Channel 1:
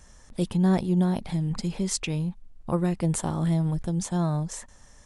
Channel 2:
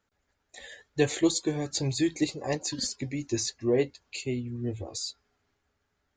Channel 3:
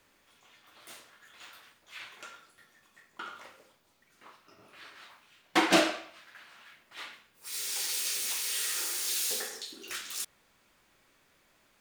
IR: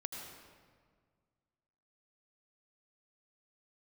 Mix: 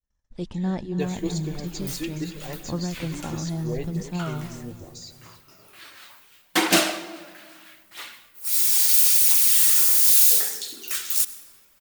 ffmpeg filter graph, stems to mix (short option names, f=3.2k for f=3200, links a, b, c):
-filter_complex "[0:a]agate=range=-10dB:threshold=-49dB:ratio=16:detection=peak,lowpass=f=6.7k:w=0.5412,lowpass=f=6.7k:w=1.3066,volume=-6dB,asplit=2[a][b];[b]volume=-13dB[c];[1:a]volume=-9dB,asplit=3[d][e][f];[e]volume=-9.5dB[g];[f]volume=-13dB[h];[2:a]aemphasis=mode=production:type=50fm,adelay=1000,volume=0.5dB,asplit=2[i][j];[j]volume=-8.5dB[k];[3:a]atrim=start_sample=2205[l];[g][k]amix=inputs=2:normalize=0[m];[m][l]afir=irnorm=-1:irlink=0[n];[c][h]amix=inputs=2:normalize=0,aecho=0:1:277|554|831|1108|1385|1662:1|0.42|0.176|0.0741|0.0311|0.0131[o];[a][d][i][n][o]amix=inputs=5:normalize=0,agate=range=-33dB:threshold=-51dB:ratio=3:detection=peak,lowshelf=f=150:g=4,aphaser=in_gain=1:out_gain=1:delay=4.1:decay=0.26:speed=0.75:type=triangular"